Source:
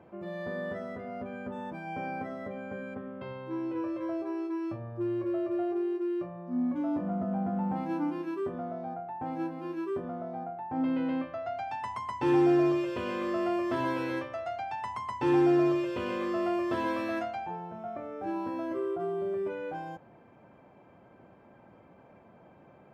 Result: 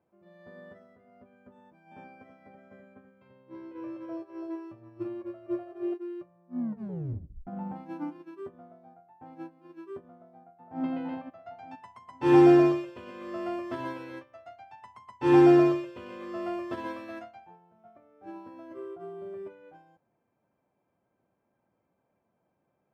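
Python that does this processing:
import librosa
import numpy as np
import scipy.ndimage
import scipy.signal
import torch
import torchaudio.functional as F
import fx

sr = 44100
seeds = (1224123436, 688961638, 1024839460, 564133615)

y = fx.echo_single(x, sr, ms=332, db=-5.5, at=(1.58, 5.94))
y = fx.echo_throw(y, sr, start_s=10.13, length_s=0.7, ms=460, feedback_pct=60, wet_db=-3.5)
y = fx.edit(y, sr, fx.tape_stop(start_s=6.59, length_s=0.88), tone=tone)
y = fx.upward_expand(y, sr, threshold_db=-40.0, expansion=2.5)
y = y * 10.0 ** (7.0 / 20.0)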